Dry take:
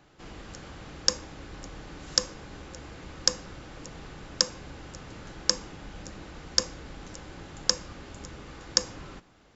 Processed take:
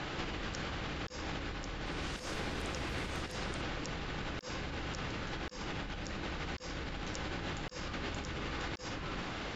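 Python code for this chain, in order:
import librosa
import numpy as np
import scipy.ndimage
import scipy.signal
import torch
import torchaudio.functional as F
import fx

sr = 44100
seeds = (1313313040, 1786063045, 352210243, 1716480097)

y = scipy.signal.sosfilt(scipy.signal.butter(2, 3200.0, 'lowpass', fs=sr, output='sos'), x)
y = fx.high_shelf(y, sr, hz=2400.0, db=11.5)
y = fx.over_compress(y, sr, threshold_db=-50.0, ratio=-1.0)
y = fx.echo_pitch(y, sr, ms=120, semitones=4, count=3, db_per_echo=-6.0, at=(1.74, 3.95))
y = y * 10.0 ** (6.5 / 20.0)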